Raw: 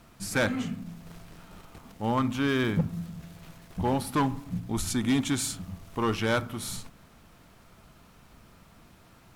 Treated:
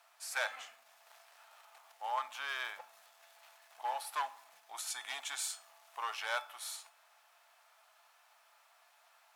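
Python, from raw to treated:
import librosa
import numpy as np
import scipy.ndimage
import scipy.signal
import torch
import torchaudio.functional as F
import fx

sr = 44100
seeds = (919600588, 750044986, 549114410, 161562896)

y = scipy.signal.sosfilt(scipy.signal.cheby1(4, 1.0, 670.0, 'highpass', fs=sr, output='sos'), x)
y = fx.comb_fb(y, sr, f0_hz=860.0, decay_s=0.32, harmonics='all', damping=0.0, mix_pct=70)
y = y * 10.0 ** (4.0 / 20.0)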